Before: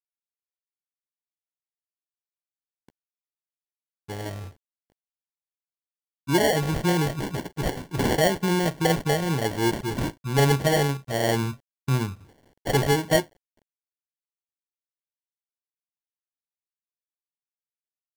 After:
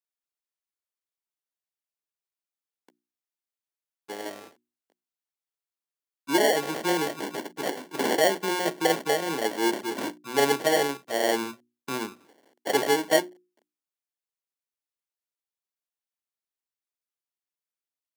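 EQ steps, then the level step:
high-pass filter 260 Hz 24 dB per octave
mains-hum notches 60/120/180/240/300/360 Hz
0.0 dB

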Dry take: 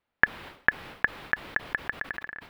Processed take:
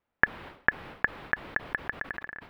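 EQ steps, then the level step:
high-shelf EQ 3,100 Hz −11.5 dB
+1.0 dB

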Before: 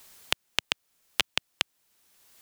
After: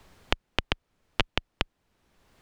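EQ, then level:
low-pass filter 3,300 Hz 6 dB per octave
spectral tilt −3 dB per octave
+4.0 dB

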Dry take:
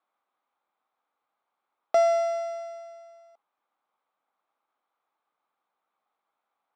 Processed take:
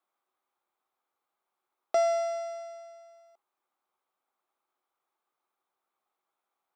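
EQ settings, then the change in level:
parametric band 370 Hz +10.5 dB 0.21 octaves
high-shelf EQ 4,700 Hz +7.5 dB
−4.5 dB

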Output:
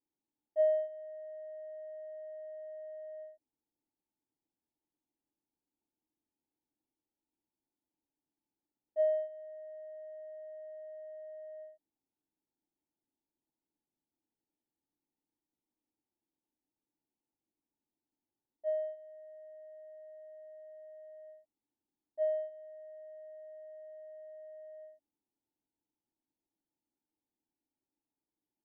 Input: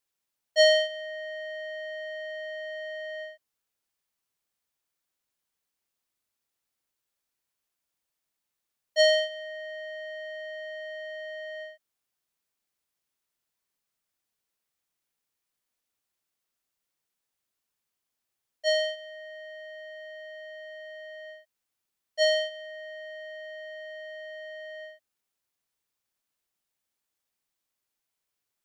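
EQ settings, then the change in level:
formant resonators in series u
+11.5 dB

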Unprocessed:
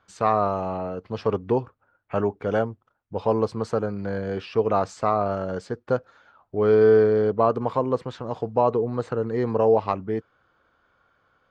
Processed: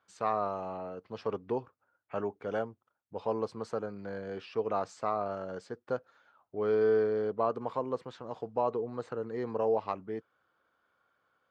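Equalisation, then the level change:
high-pass filter 230 Hz 6 dB per octave
−9.0 dB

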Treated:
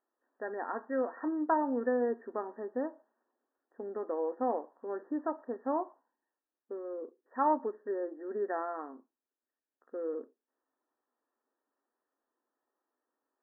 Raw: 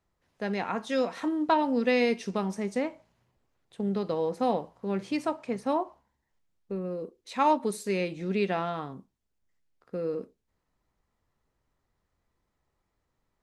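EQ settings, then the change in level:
linear-phase brick-wall band-pass 230–1,900 Hz
−4.5 dB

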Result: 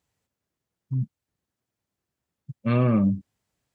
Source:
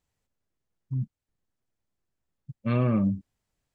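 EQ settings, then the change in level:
high-pass filter 75 Hz
+3.5 dB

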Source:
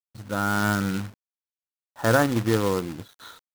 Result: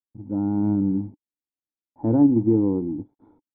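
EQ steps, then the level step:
formant resonators in series u
low-shelf EQ 480 Hz +11 dB
high-shelf EQ 2,600 Hz +8.5 dB
+3.5 dB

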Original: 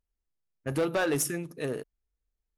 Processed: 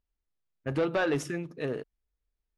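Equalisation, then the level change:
low-pass filter 4,100 Hz 12 dB per octave
0.0 dB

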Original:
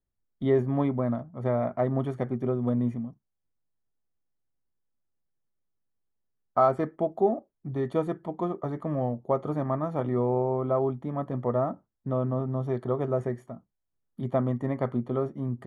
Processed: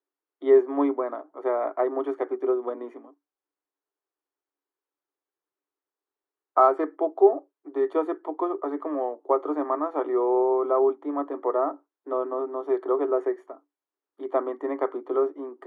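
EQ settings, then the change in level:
Chebyshev high-pass with heavy ripple 280 Hz, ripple 6 dB
low-pass filter 2,100 Hz 6 dB per octave
+7.5 dB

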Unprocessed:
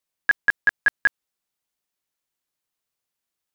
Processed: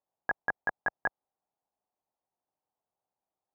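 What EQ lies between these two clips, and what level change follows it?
high-pass filter 54 Hz 6 dB per octave
low-pass with resonance 790 Hz, resonance Q 3.5
−2.0 dB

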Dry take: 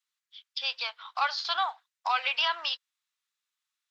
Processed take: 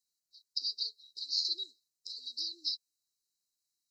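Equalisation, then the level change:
linear-phase brick-wall band-stop 440–3,800 Hz
+3.0 dB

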